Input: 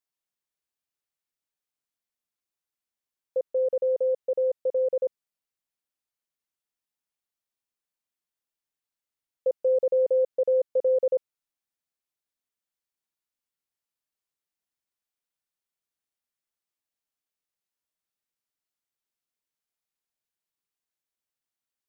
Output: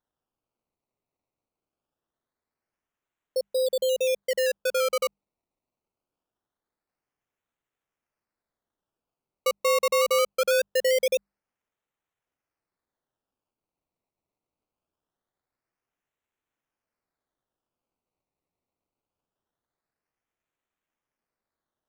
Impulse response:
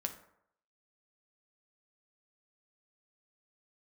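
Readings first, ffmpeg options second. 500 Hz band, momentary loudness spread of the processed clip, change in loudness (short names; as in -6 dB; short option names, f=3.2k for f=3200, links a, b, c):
-1.0 dB, 8 LU, +0.5 dB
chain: -af "acrusher=samples=18:mix=1:aa=0.000001:lfo=1:lforange=18:lforate=0.23,bandreject=f=50:t=h:w=6,bandreject=f=100:t=h:w=6,bandreject=f=150:t=h:w=6,bandreject=f=200:t=h:w=6"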